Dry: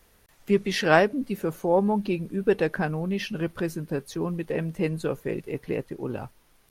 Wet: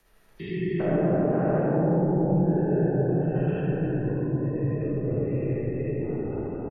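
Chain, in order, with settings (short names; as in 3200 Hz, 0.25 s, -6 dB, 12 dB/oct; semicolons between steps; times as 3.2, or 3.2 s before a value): stepped spectrum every 0.4 s; on a send: bouncing-ball echo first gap 0.29 s, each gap 0.8×, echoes 5; on the sum: frequency shift -28 Hz; spectral gate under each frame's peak -25 dB strong; treble ducked by the level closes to 550 Hz, closed at -22.5 dBFS; digital reverb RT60 3.3 s, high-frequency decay 0.3×, pre-delay 0 ms, DRR -7 dB; gain -4 dB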